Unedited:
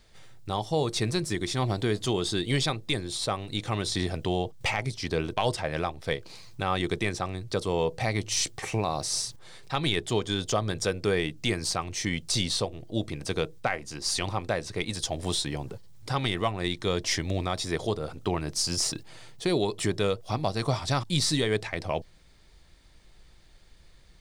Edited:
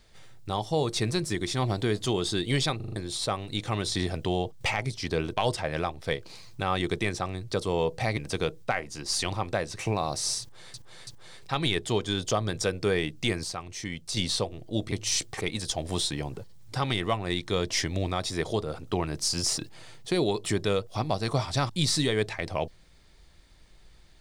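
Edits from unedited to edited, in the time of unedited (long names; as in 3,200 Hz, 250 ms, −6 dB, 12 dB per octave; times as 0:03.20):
0:02.76: stutter in place 0.04 s, 5 plays
0:08.17–0:08.66: swap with 0:13.13–0:14.75
0:09.28–0:09.61: repeat, 3 plays
0:11.65–0:12.38: clip gain −6 dB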